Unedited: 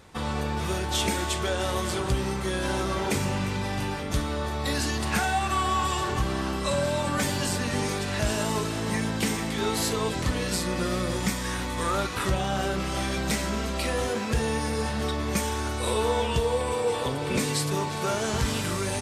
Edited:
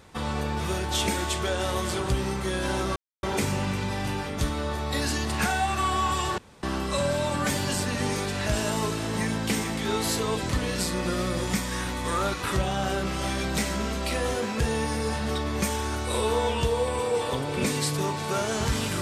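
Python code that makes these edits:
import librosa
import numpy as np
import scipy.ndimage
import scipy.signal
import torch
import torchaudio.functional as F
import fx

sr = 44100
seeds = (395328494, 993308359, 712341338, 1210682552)

y = fx.edit(x, sr, fx.insert_silence(at_s=2.96, length_s=0.27),
    fx.room_tone_fill(start_s=6.11, length_s=0.25), tone=tone)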